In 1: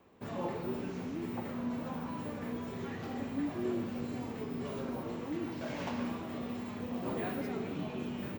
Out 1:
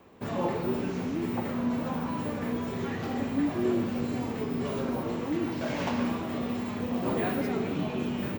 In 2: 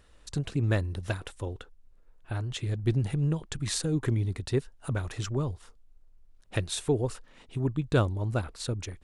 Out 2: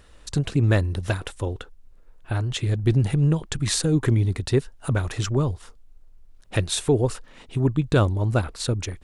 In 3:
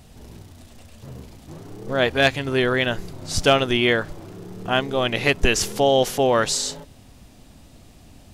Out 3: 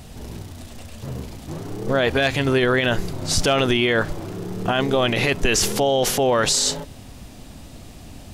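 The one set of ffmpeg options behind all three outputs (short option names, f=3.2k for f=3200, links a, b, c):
-af "alimiter=limit=-17.5dB:level=0:latency=1:release=16,volume=7.5dB"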